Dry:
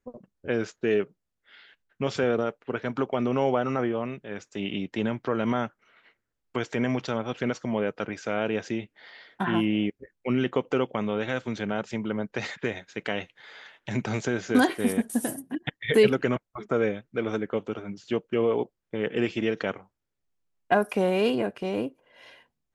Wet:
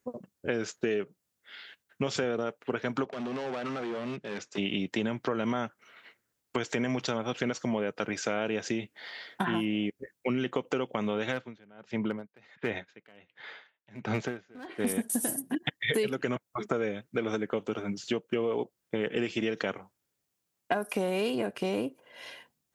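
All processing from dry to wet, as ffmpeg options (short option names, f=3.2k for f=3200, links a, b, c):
-filter_complex "[0:a]asettb=1/sr,asplit=3[a][b][c];[a]atrim=end=3.044[d];[b]atrim=start=3.04:end=4.58,asetpts=PTS-STARTPTS,afade=t=in:d=0.004:c=qsin,afade=t=out:st=1.536:d=0.004:c=qsin,acompressor=threshold=-27dB:ratio=10:attack=3.2:release=140:knee=1:detection=peak,asoftclip=type=hard:threshold=-35dB,highpass=120,lowpass=5.2k[e];[c]atrim=start=4.576[f];[d][e]acrossfade=d=0.004:c1=hsin:c2=qsin[g];[g][f]acrossfade=d=0.004:c1=qsin:c2=hsin,asettb=1/sr,asplit=3[h][i][j];[h]atrim=end=11.324[k];[i]atrim=start=11.32:end=14.87,asetpts=PTS-STARTPTS,afade=t=in:d=0.004:c=qsin,afade=t=out:st=3.546:d=0.004:c=qsin,lowpass=2.9k,aeval=exprs='clip(val(0),-1,0.1)':c=same,aeval=exprs='val(0)*pow(10,-31*(0.5-0.5*cos(2*PI*1.4*n/s))/20)':c=same[l];[j]atrim=start=14.866[m];[k][l]acrossfade=d=0.004:c1=hsin:c2=qsin[n];[n][m]acrossfade=d=0.004:c1=qsin:c2=hsin,highpass=97,highshelf=f=5.1k:g=10,acompressor=threshold=-30dB:ratio=6,volume=3.5dB"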